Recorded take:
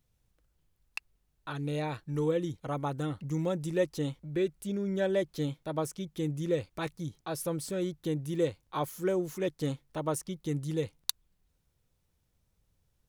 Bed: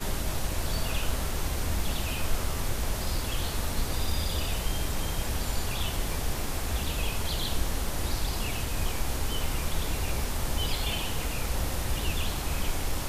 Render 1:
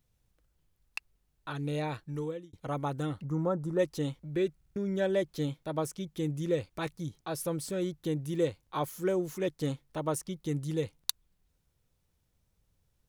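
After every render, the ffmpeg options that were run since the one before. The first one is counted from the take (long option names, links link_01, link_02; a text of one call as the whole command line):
ffmpeg -i in.wav -filter_complex "[0:a]asplit=3[link_01][link_02][link_03];[link_01]afade=type=out:start_time=3.24:duration=0.02[link_04];[link_02]highshelf=frequency=1800:width_type=q:width=3:gain=-12,afade=type=in:start_time=3.24:duration=0.02,afade=type=out:start_time=3.78:duration=0.02[link_05];[link_03]afade=type=in:start_time=3.78:duration=0.02[link_06];[link_04][link_05][link_06]amix=inputs=3:normalize=0,asplit=6[link_07][link_08][link_09][link_10][link_11][link_12];[link_07]atrim=end=2.53,asetpts=PTS-STARTPTS,afade=type=out:start_time=1.96:duration=0.57[link_13];[link_08]atrim=start=2.53:end=4.612,asetpts=PTS-STARTPTS,afade=type=in:duration=0.004:curve=hsin[link_14];[link_09]atrim=start=4.558:end=4.612[link_15];[link_10]atrim=start=4.558:end=4.612[link_16];[link_11]atrim=start=4.558:end=4.612[link_17];[link_12]atrim=start=4.758[link_18];[link_13][link_14]concat=n=2:v=0:a=1[link_19];[link_19][link_15]acrossfade=duration=0.004:curve1=hsin:curve2=hsin[link_20];[link_20][link_16]acrossfade=duration=0.004:curve1=hsin:curve2=hsin[link_21];[link_21][link_17]acrossfade=duration=0.004:curve1=hsin:curve2=hsin[link_22];[link_22][link_18]acrossfade=duration=0.004:curve1=hsin:curve2=hsin" out.wav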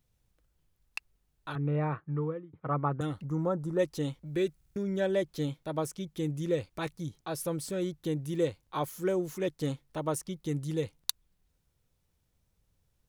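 ffmpeg -i in.wav -filter_complex "[0:a]asettb=1/sr,asplit=3[link_01][link_02][link_03];[link_01]atrim=end=1.554[link_04];[link_02]atrim=start=1.55:end=3.01,asetpts=PTS-STARTPTS,afade=type=in:duration=0.004:curve=qsin,afade=type=out:start_time=1.456:duration=0.004:curve=qsin,highpass=110,equalizer=frequency=150:width_type=q:width=4:gain=7,equalizer=frequency=390:width_type=q:width=4:gain=3,equalizer=frequency=1200:width_type=q:width=4:gain=10,lowpass=frequency=2100:width=0.5412,lowpass=frequency=2100:width=1.3066[link_05];[link_03]atrim=start=3.006[link_06];[link_04][link_05]acrossfade=duration=0.004:curve1=hsin:curve2=qsin[link_07];[link_07][link_06]acrossfade=duration=0.004:curve1=qsin:curve2=hsin,asettb=1/sr,asplit=3[link_08][link_09][link_10];[link_08]atrim=end=4.264[link_11];[link_09]atrim=start=4.26:end=4.83,asetpts=PTS-STARTPTS,afade=type=in:duration=0.004:curve=qsin,afade=type=out:start_time=0.566:duration=0.004:curve=qsin,highshelf=frequency=4300:gain=6.5[link_12];[link_10]atrim=start=4.826[link_13];[link_11][link_12]acrossfade=duration=0.004:curve1=hsin:curve2=qsin[link_14];[link_14][link_13]acrossfade=duration=0.004:curve1=qsin:curve2=hsin" out.wav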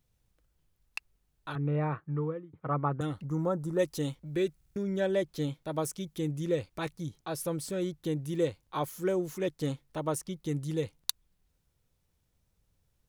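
ffmpeg -i in.wav -filter_complex "[0:a]asettb=1/sr,asplit=3[link_01][link_02][link_03];[link_01]atrim=end=3.314[link_04];[link_02]atrim=start=3.31:end=4.15,asetpts=PTS-STARTPTS,afade=type=in:duration=0.004:curve=qsin,afade=type=out:start_time=0.836:duration=0.004:curve=qsin,highshelf=frequency=6300:gain=7.5[link_05];[link_03]atrim=start=4.146[link_06];[link_04][link_05]acrossfade=duration=0.004:curve1=hsin:curve2=qsin[link_07];[link_07][link_06]acrossfade=duration=0.004:curve1=qsin:curve2=hsin,asettb=1/sr,asplit=3[link_08][link_09][link_10];[link_08]atrim=end=5.714[link_11];[link_09]atrim=start=5.71:end=6.18,asetpts=PTS-STARTPTS,afade=type=in:duration=0.004:curve=qsin,afade=type=out:start_time=0.466:duration=0.004:curve=qsin,highshelf=frequency=5500:gain=6[link_12];[link_10]atrim=start=6.176[link_13];[link_11][link_12]acrossfade=duration=0.004:curve1=hsin:curve2=qsin[link_14];[link_14][link_13]acrossfade=duration=0.004:curve1=qsin:curve2=hsin" out.wav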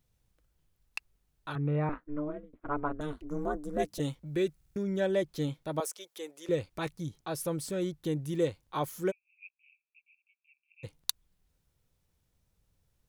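ffmpeg -i in.wav -filter_complex "[0:a]asettb=1/sr,asplit=3[link_01][link_02][link_03];[link_01]atrim=end=1.894[link_04];[link_02]atrim=start=1.89:end=4,asetpts=PTS-STARTPTS,afade=type=in:duration=0.004:curve=qsin,afade=type=out:start_time=2.106:duration=0.004:curve=qsin,aeval=exprs='val(0)*sin(2*PI*150*n/s)':channel_layout=same[link_05];[link_03]atrim=start=3.996[link_06];[link_04][link_05]acrossfade=duration=0.004:curve1=hsin:curve2=qsin[link_07];[link_07][link_06]acrossfade=duration=0.004:curve1=qsin:curve2=hsin,asettb=1/sr,asplit=3[link_08][link_09][link_10];[link_08]atrim=end=5.804[link_11];[link_09]atrim=start=5.8:end=6.49,asetpts=PTS-STARTPTS,afade=type=in:duration=0.004:curve=qsin,afade=type=out:start_time=0.686:duration=0.004:curve=qsin,highpass=frequency=460:width=0.5412,highpass=frequency=460:width=1.3066[link_12];[link_10]atrim=start=6.486[link_13];[link_11][link_12]acrossfade=duration=0.004:curve1=hsin:curve2=qsin[link_14];[link_14][link_13]acrossfade=duration=0.004:curve1=qsin:curve2=hsin,asplit=3[link_15][link_16][link_17];[link_15]afade=type=out:start_time=9.1:duration=0.02[link_18];[link_16]asuperpass=centerf=2500:order=8:qfactor=6.6,afade=type=in:start_time=9.1:duration=0.02,afade=type=out:start_time=10.83:duration=0.02[link_19];[link_17]afade=type=in:start_time=10.83:duration=0.02[link_20];[link_18][link_19][link_20]amix=inputs=3:normalize=0" out.wav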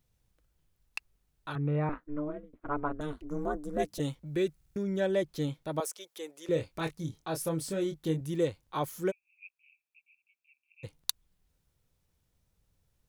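ffmpeg -i in.wav -filter_complex "[0:a]asettb=1/sr,asplit=3[link_01][link_02][link_03];[link_01]atrim=end=6.534[link_04];[link_02]atrim=start=6.53:end=8.21,asetpts=PTS-STARTPTS,afade=type=in:duration=0.004:curve=qsin,afade=type=out:start_time=1.676:duration=0.004:curve=qsin,asplit=2[link_05][link_06];[link_06]adelay=25,volume=-6.5dB[link_07];[link_05][link_07]amix=inputs=2:normalize=0,atrim=end_sample=74088[link_08];[link_03]atrim=start=8.206[link_09];[link_04][link_08]acrossfade=duration=0.004:curve1=hsin:curve2=qsin[link_10];[link_10][link_09]acrossfade=duration=0.004:curve1=qsin:curve2=hsin" out.wav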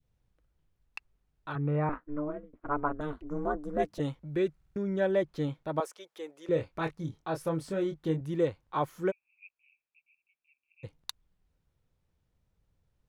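ffmpeg -i in.wav -af "lowpass=frequency=2100:poles=1,adynamicequalizer=threshold=0.00631:dfrequency=1200:dqfactor=0.7:tfrequency=1200:tqfactor=0.7:attack=5:release=100:ratio=0.375:range=2.5:mode=boostabove:tftype=bell" out.wav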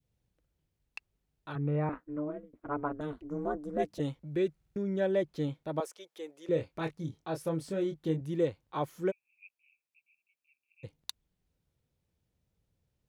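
ffmpeg -i in.wav -af "highpass=frequency=87:poles=1,equalizer=frequency=1200:width=0.96:gain=-6" out.wav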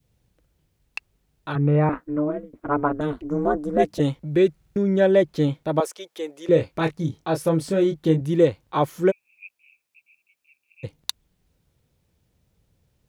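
ffmpeg -i in.wav -af "volume=12dB" out.wav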